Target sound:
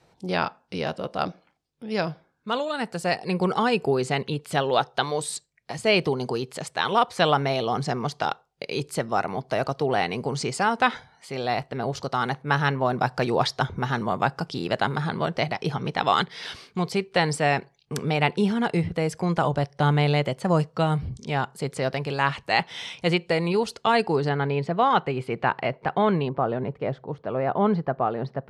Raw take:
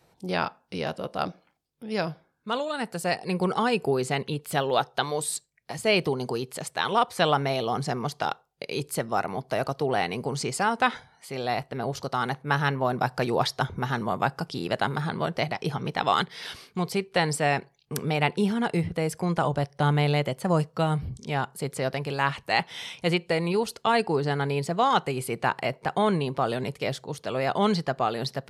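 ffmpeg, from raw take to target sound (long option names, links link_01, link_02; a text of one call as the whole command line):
ffmpeg -i in.wav -af "asetnsamples=nb_out_samples=441:pad=0,asendcmd='24.29 lowpass f 2900;26.29 lowpass f 1300',lowpass=7700,volume=2dB" out.wav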